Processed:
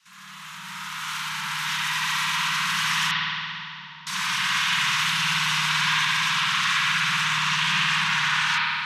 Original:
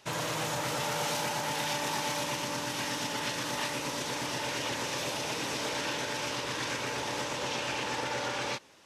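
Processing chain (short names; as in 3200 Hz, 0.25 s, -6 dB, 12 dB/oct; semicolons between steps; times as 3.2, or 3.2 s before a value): opening faded in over 2.84 s; elliptic band-stop 110–1100 Hz, stop band 60 dB; upward compressor, threshold -49 dBFS; 3.11–4.07 vocal tract filter u; spring tank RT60 2.6 s, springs 54 ms, chirp 20 ms, DRR -8.5 dB; frequency shift +61 Hz; gain +6.5 dB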